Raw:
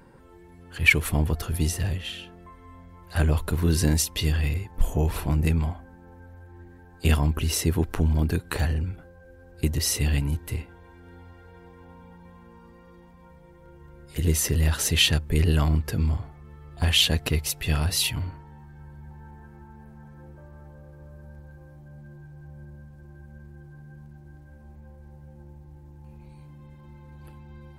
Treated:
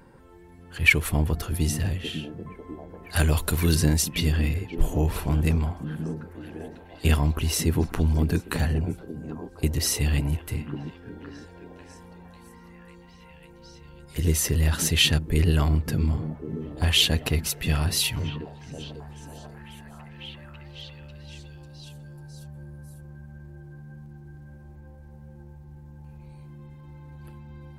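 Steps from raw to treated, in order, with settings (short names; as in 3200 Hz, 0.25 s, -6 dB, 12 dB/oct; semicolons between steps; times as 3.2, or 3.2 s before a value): 3.13–3.75 high shelf 2500 Hz +11.5 dB; delay with a stepping band-pass 0.546 s, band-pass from 210 Hz, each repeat 0.7 oct, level -4 dB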